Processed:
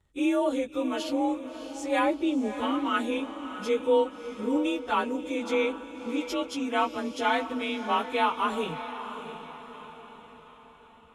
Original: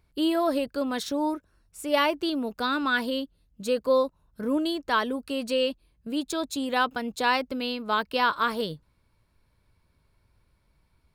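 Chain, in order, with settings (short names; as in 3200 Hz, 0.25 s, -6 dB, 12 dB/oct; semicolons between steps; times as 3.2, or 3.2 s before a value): inharmonic rescaling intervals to 92%; 1.99–2.79 tilt shelf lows +4.5 dB, about 650 Hz; diffused feedback echo 0.645 s, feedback 49%, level -10.5 dB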